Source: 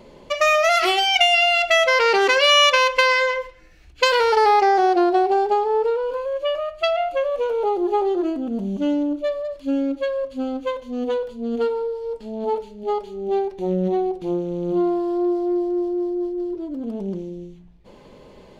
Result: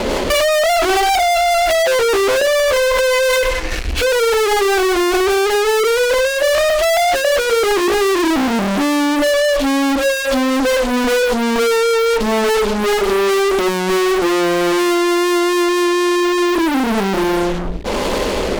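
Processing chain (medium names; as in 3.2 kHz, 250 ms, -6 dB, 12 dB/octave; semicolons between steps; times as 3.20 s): low-pass that closes with the level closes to 550 Hz, closed at -14 dBFS; rotary cabinet horn 5 Hz, later 1.1 Hz, at 15.08 s; fuzz box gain 52 dB, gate -56 dBFS; peaking EQ 140 Hz -15 dB 0.58 oct; hum notches 60/120/180/240/300/360/420/480/540 Hz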